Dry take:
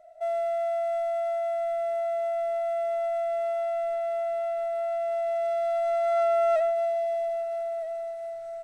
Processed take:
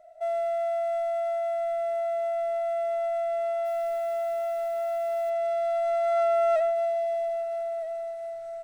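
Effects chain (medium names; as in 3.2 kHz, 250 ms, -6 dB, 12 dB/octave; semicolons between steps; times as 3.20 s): 3.64–5.29 s: added noise white -58 dBFS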